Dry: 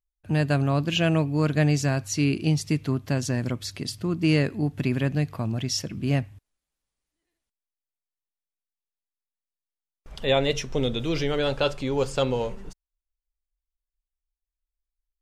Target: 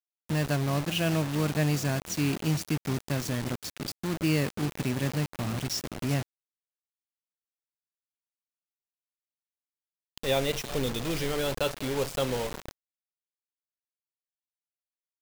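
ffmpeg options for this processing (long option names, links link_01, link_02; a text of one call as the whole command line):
ffmpeg -i in.wav -filter_complex "[0:a]asplit=5[link_01][link_02][link_03][link_04][link_05];[link_02]adelay=371,afreqshift=38,volume=-19dB[link_06];[link_03]adelay=742,afreqshift=76,volume=-25.2dB[link_07];[link_04]adelay=1113,afreqshift=114,volume=-31.4dB[link_08];[link_05]adelay=1484,afreqshift=152,volume=-37.6dB[link_09];[link_01][link_06][link_07][link_08][link_09]amix=inputs=5:normalize=0,acrusher=bits=4:mix=0:aa=0.000001,volume=-5dB" out.wav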